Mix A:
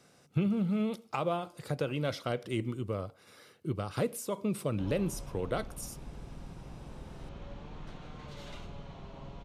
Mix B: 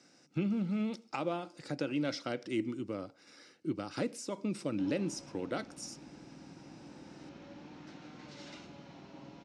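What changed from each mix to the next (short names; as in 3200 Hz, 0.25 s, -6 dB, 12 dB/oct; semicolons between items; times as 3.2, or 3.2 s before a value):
master: add speaker cabinet 220–7700 Hz, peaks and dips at 300 Hz +9 dB, 430 Hz -8 dB, 660 Hz -5 dB, 1100 Hz -8 dB, 3300 Hz -5 dB, 5300 Hz +6 dB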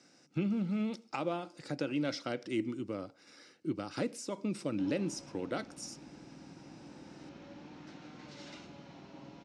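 none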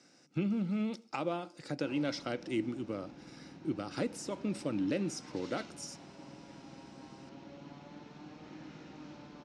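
background: entry -2.95 s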